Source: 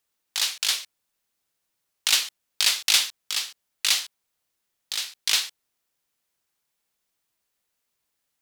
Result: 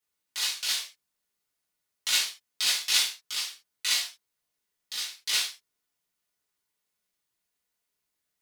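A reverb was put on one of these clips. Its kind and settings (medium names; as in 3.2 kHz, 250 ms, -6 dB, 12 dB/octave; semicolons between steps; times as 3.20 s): gated-style reverb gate 120 ms falling, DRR -7.5 dB; trim -12 dB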